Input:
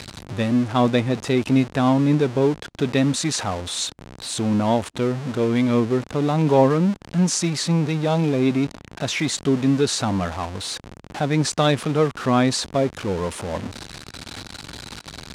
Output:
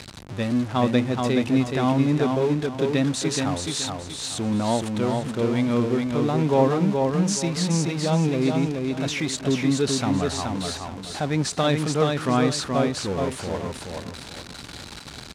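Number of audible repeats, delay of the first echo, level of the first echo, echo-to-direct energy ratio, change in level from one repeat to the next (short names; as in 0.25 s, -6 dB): 3, 0.425 s, -4.0 dB, -3.5 dB, -10.5 dB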